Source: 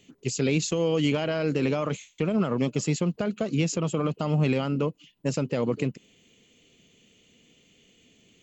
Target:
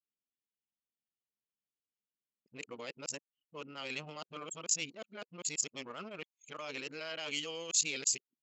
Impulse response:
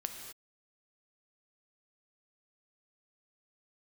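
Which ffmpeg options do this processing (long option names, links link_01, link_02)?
-af "areverse,anlmdn=10,aderivative,volume=4.5dB"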